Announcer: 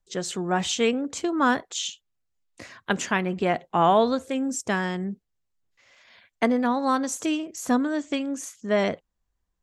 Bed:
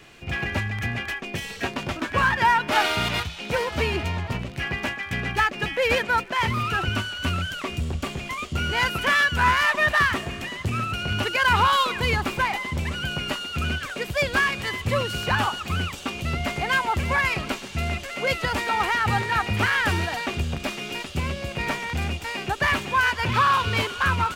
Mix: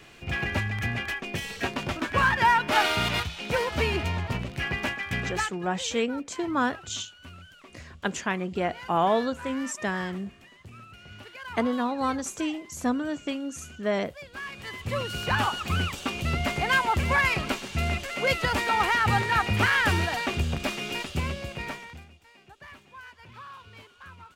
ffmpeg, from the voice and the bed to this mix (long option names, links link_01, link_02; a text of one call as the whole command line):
ffmpeg -i stem1.wav -i stem2.wav -filter_complex "[0:a]adelay=5150,volume=-4dB[link_01];[1:a]volume=18.5dB,afade=type=out:start_time=5.17:duration=0.43:silence=0.112202,afade=type=in:start_time=14.32:duration=1.35:silence=0.1,afade=type=out:start_time=21.03:duration=1.03:silence=0.0595662[link_02];[link_01][link_02]amix=inputs=2:normalize=0" out.wav